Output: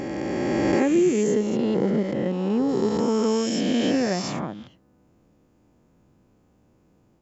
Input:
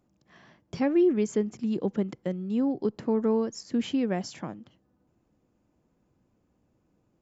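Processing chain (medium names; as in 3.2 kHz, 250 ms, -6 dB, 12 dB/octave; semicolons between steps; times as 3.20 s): reverse spectral sustain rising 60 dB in 2.93 s; 1.90–2.69 s: treble shelf 5.4 kHz -7.5 dB; in parallel at -1.5 dB: compression, threshold -34 dBFS, peak gain reduction 15.5 dB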